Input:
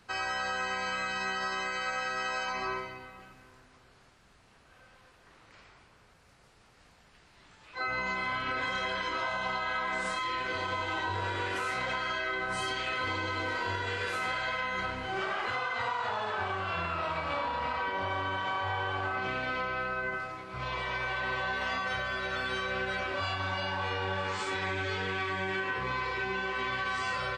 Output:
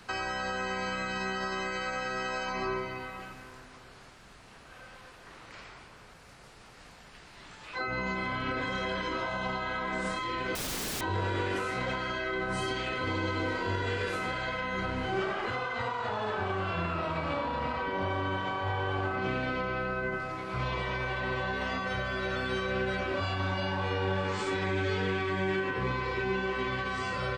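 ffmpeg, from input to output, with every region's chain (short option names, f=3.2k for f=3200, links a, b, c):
-filter_complex "[0:a]asettb=1/sr,asplit=3[a][b][c];[a]atrim=end=10.554[d];[b]atrim=start=10.55:end=11.01,asetpts=PTS-STARTPTS,afade=t=in:d=0.004:c=qsin,afade=t=out:st=0.456:d=0.004:c=qsin,tiltshelf=f=860:g=-8,aeval=exprs='(mod(31.6*val(0)+1,2)-1)/31.6':c=same[e];[c]atrim=start=11.006[f];[d][e]acrossfade=d=0.004:c1=hsin:c2=qsin[g];[g][f]acrossfade=d=0.004:c1=qsin:c2=hsin,equalizer=f=81:w=2.3:g=-4.5,acrossover=split=450[h][i];[i]acompressor=threshold=-45dB:ratio=3[j];[h][j]amix=inputs=2:normalize=0,volume=8.5dB"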